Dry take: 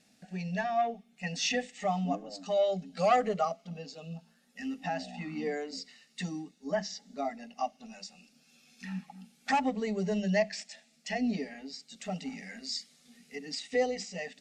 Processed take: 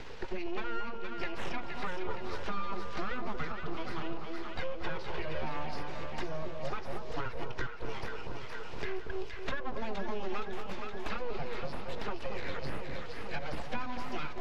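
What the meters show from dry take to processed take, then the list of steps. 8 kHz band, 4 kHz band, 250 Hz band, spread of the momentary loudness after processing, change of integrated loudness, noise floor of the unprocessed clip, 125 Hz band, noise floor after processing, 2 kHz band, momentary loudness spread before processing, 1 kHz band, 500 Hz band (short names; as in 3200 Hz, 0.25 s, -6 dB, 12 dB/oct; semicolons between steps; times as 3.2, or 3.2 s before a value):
-15.0 dB, -6.0 dB, -7.0 dB, 3 LU, -6.0 dB, -67 dBFS, -3.0 dB, -36 dBFS, -1.0 dB, 15 LU, -5.5 dB, -6.5 dB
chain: compressor, threshold -43 dBFS, peak gain reduction 21 dB; full-wave rectifier; air absorption 210 m; on a send: echo with dull and thin repeats by turns 0.234 s, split 1100 Hz, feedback 76%, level -5 dB; on the sum: three-band squash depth 70%; gain +12 dB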